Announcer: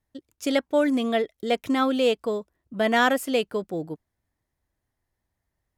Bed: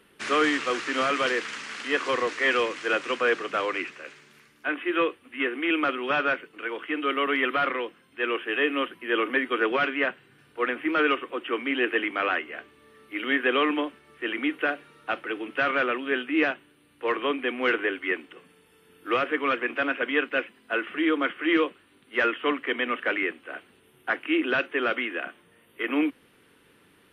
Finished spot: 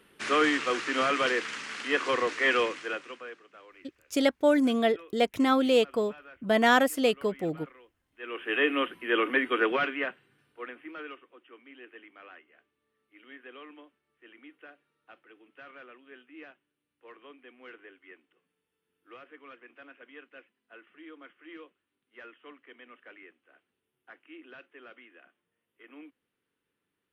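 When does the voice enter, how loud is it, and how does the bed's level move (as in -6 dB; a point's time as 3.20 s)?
3.70 s, -1.0 dB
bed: 2.68 s -1.5 dB
3.47 s -25.5 dB
7.99 s -25.5 dB
8.52 s -1 dB
9.63 s -1 dB
11.46 s -24.5 dB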